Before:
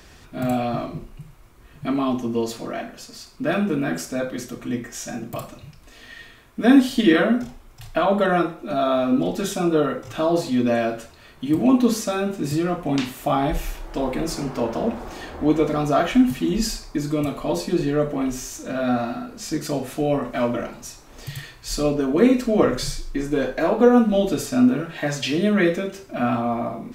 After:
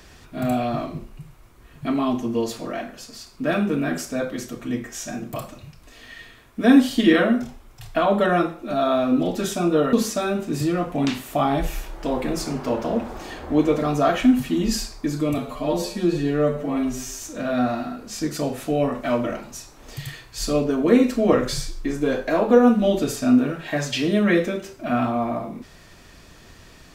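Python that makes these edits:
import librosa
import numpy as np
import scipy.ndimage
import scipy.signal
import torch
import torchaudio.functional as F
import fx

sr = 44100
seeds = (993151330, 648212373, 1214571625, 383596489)

y = fx.edit(x, sr, fx.cut(start_s=9.93, length_s=1.91),
    fx.stretch_span(start_s=17.29, length_s=1.22, factor=1.5), tone=tone)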